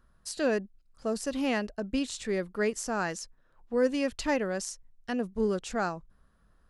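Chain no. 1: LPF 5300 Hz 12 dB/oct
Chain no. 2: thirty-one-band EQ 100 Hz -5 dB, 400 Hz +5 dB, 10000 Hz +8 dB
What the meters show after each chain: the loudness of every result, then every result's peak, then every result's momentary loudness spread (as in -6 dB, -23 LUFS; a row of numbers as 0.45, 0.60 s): -31.5, -30.0 LUFS; -15.0, -14.5 dBFS; 15, 10 LU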